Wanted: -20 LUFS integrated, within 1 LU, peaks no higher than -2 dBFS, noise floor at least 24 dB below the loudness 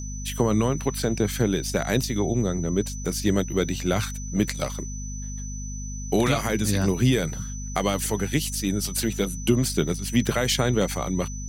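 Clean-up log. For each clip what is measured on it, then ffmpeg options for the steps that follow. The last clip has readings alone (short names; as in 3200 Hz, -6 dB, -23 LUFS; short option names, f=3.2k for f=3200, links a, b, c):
hum 50 Hz; harmonics up to 250 Hz; hum level -31 dBFS; steady tone 6000 Hz; tone level -38 dBFS; loudness -25.0 LUFS; peak -7.5 dBFS; loudness target -20.0 LUFS
-> -af "bandreject=f=50:t=h:w=4,bandreject=f=100:t=h:w=4,bandreject=f=150:t=h:w=4,bandreject=f=200:t=h:w=4,bandreject=f=250:t=h:w=4"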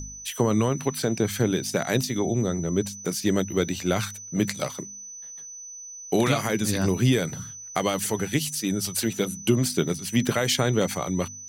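hum none; steady tone 6000 Hz; tone level -38 dBFS
-> -af "bandreject=f=6k:w=30"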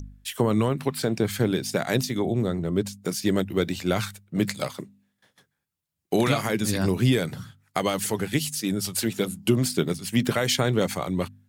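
steady tone none; loudness -25.5 LUFS; peak -8.0 dBFS; loudness target -20.0 LUFS
-> -af "volume=5.5dB"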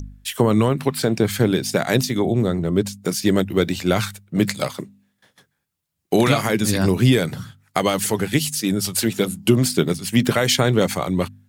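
loudness -20.0 LUFS; peak -2.5 dBFS; noise floor -73 dBFS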